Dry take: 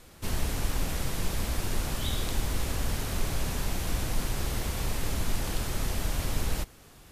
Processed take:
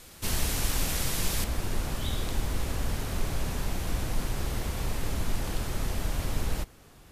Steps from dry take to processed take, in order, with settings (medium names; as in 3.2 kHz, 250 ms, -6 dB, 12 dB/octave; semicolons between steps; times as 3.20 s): treble shelf 2.2 kHz +7.5 dB, from 1.44 s -3.5 dB